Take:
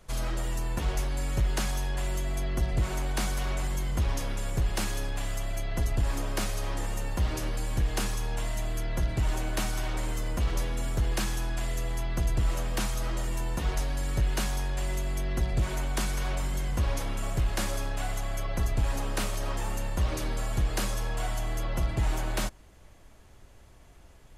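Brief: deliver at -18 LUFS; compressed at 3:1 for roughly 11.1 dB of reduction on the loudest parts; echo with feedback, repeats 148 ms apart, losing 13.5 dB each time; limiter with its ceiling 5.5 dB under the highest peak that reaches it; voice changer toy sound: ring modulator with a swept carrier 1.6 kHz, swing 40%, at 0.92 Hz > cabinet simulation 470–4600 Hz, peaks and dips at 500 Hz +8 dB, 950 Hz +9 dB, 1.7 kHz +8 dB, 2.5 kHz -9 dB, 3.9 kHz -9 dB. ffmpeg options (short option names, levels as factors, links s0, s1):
-af "acompressor=threshold=0.0141:ratio=3,alimiter=level_in=2.24:limit=0.0631:level=0:latency=1,volume=0.447,aecho=1:1:148|296:0.211|0.0444,aeval=exprs='val(0)*sin(2*PI*1600*n/s+1600*0.4/0.92*sin(2*PI*0.92*n/s))':c=same,highpass=470,equalizer=f=500:t=q:w=4:g=8,equalizer=f=950:t=q:w=4:g=9,equalizer=f=1700:t=q:w=4:g=8,equalizer=f=2500:t=q:w=4:g=-9,equalizer=f=3900:t=q:w=4:g=-9,lowpass=f=4600:w=0.5412,lowpass=f=4600:w=1.3066,volume=7.08"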